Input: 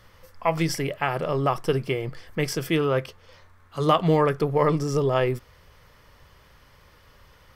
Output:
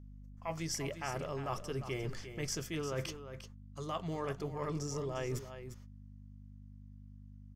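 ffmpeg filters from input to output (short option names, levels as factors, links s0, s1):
-filter_complex "[0:a]bandreject=f=480:w=12,agate=range=0.0178:threshold=0.00794:ratio=16:detection=peak,equalizer=f=6600:w=2.3:g=13.5,areverse,acompressor=threshold=0.0251:ratio=12,areverse,aeval=exprs='val(0)+0.00447*(sin(2*PI*50*n/s)+sin(2*PI*2*50*n/s)/2+sin(2*PI*3*50*n/s)/3+sin(2*PI*4*50*n/s)/4+sin(2*PI*5*50*n/s)/5)':c=same,asplit=2[s0][s1];[s1]aecho=0:1:351:0.299[s2];[s0][s2]amix=inputs=2:normalize=0,volume=0.708"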